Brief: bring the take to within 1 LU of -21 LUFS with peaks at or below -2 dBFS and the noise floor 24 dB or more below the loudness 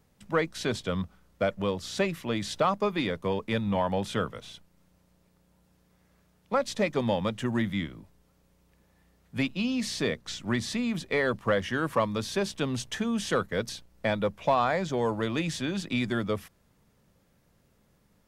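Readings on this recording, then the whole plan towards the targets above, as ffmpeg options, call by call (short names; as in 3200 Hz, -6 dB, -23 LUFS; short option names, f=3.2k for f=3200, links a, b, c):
loudness -29.5 LUFS; peak -13.0 dBFS; loudness target -21.0 LUFS
-> -af "volume=8.5dB"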